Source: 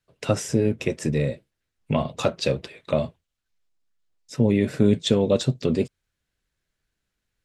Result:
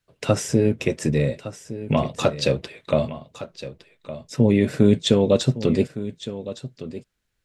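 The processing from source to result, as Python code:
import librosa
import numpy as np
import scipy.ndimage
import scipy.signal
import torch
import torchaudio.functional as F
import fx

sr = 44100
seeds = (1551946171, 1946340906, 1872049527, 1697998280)

y = x + 10.0 ** (-14.0 / 20.0) * np.pad(x, (int(1162 * sr / 1000.0), 0))[:len(x)]
y = F.gain(torch.from_numpy(y), 2.5).numpy()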